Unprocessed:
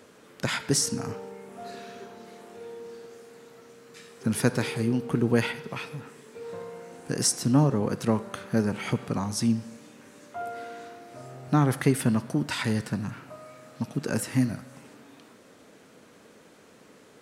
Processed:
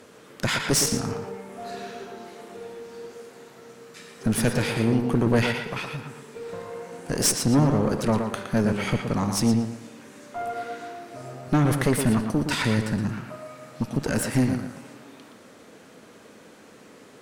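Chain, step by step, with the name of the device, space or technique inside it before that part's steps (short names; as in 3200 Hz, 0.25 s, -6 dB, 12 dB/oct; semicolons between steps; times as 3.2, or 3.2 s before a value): rockabilly slapback (tube stage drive 22 dB, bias 0.7; tape echo 0.117 s, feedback 33%, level -5 dB, low-pass 4900 Hz); gain +7.5 dB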